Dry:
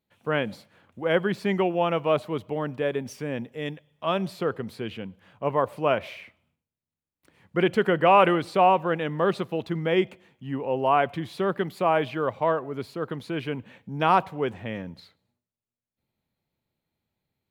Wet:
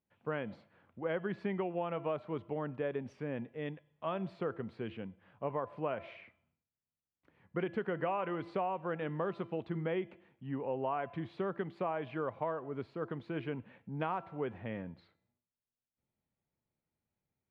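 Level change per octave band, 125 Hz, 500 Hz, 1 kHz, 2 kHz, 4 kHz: −9.5, −12.0, −15.0, −14.0, −19.0 decibels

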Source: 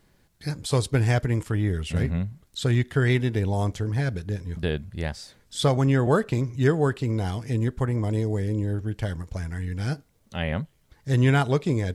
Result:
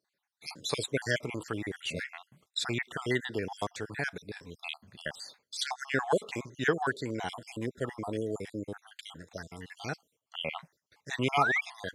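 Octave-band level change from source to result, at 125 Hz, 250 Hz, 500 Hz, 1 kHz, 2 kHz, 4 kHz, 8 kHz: −19.0, −11.0, −7.5, −2.0, −0.5, −1.0, −3.5 decibels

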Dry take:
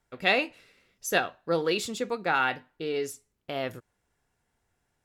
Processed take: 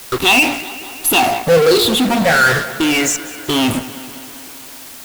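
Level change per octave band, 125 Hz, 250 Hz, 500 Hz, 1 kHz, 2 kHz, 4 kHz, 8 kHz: +18.0, +18.5, +14.0, +13.5, +14.5, +18.0, +20.5 decibels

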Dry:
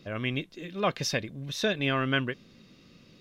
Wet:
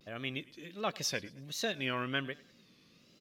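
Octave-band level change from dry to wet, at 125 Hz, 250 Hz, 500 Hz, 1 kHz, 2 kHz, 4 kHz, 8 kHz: −11.0, −9.0, −8.0, −6.5, −6.5, −4.5, −1.5 decibels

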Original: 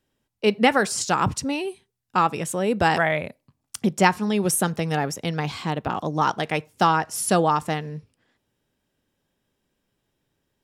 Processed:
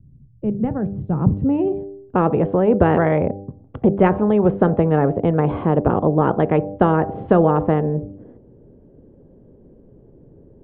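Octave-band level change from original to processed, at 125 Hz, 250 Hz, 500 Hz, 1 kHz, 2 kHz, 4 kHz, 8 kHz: +9.0 dB, +8.0 dB, +7.5 dB, −0.5 dB, −6.0 dB, below −15 dB, below −40 dB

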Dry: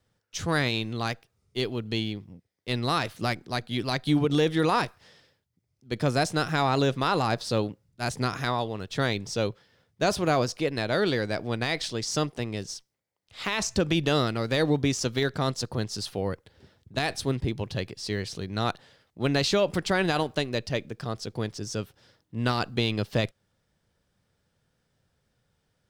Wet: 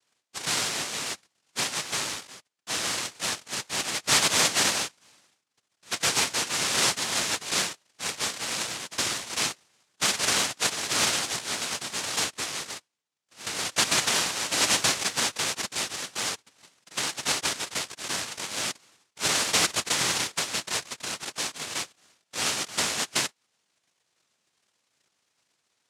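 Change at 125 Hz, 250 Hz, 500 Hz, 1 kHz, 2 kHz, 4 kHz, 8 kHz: −14.5, −11.5, −9.5, −2.5, +2.5, +6.5, +13.5 decibels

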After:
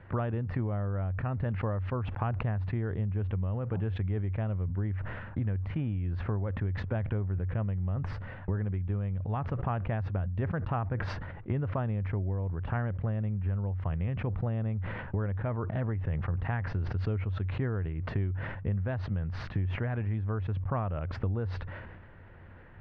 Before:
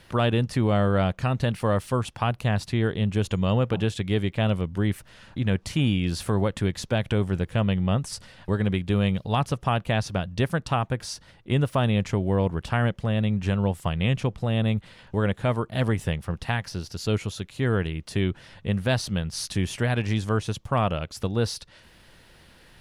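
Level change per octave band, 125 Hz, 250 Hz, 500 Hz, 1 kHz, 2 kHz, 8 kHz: −4.5 dB, −10.0 dB, −11.0 dB, −9.5 dB, −10.0 dB, below −30 dB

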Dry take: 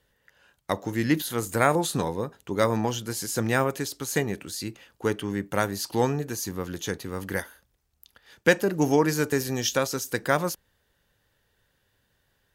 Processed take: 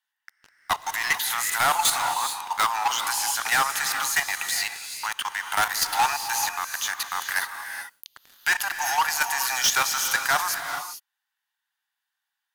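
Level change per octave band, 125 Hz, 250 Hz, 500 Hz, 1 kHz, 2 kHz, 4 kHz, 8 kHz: −20.5, −22.5, −14.5, +6.5, +6.5, +8.5, +8.0 decibels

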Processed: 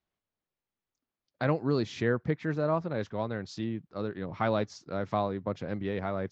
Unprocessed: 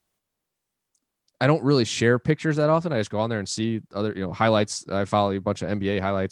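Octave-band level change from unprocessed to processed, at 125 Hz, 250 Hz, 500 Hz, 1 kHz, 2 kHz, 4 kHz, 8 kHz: −8.0 dB, −8.0 dB, −8.0 dB, −8.5 dB, −9.5 dB, −14.0 dB, below −15 dB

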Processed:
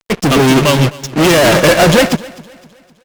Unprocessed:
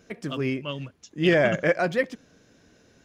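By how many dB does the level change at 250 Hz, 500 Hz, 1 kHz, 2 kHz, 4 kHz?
+16.0, +13.5, +19.0, +12.5, +20.5 decibels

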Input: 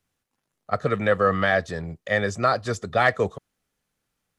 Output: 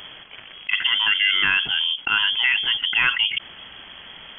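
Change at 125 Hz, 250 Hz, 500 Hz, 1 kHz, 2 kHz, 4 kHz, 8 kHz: −18.0 dB, −16.0 dB, −26.0 dB, −7.0 dB, +6.5 dB, +21.0 dB, below −30 dB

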